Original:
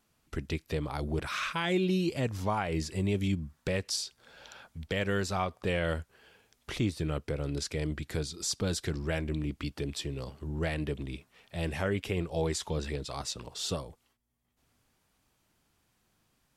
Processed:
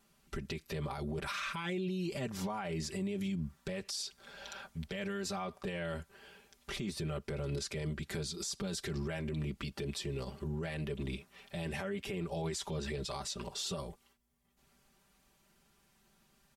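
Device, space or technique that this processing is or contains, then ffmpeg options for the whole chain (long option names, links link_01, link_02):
stacked limiters: -af "aecho=1:1:5.1:0.84,alimiter=limit=-23.5dB:level=0:latency=1:release=31,alimiter=level_in=6.5dB:limit=-24dB:level=0:latency=1:release=102,volume=-6.5dB,volume=1dB"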